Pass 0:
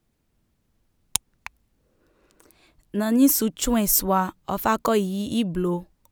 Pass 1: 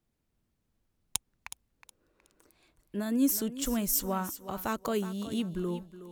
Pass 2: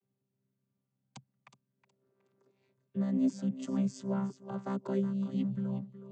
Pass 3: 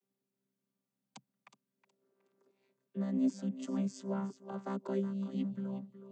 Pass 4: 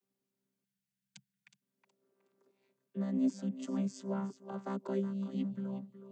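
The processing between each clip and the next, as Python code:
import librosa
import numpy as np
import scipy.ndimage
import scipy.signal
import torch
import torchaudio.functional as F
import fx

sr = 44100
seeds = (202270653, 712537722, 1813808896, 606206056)

y1 = fx.dynamic_eq(x, sr, hz=900.0, q=1.2, threshold_db=-33.0, ratio=4.0, max_db=-5)
y1 = fx.echo_thinned(y1, sr, ms=368, feedback_pct=26, hz=200.0, wet_db=-12.5)
y1 = y1 * librosa.db_to_amplitude(-8.5)
y2 = fx.chord_vocoder(y1, sr, chord='bare fifth', root=48)
y3 = scipy.signal.sosfilt(scipy.signal.butter(4, 190.0, 'highpass', fs=sr, output='sos'), y2)
y3 = y3 * librosa.db_to_amplitude(-1.5)
y4 = fx.spec_box(y3, sr, start_s=0.65, length_s=0.97, low_hz=200.0, high_hz=1400.0, gain_db=-20)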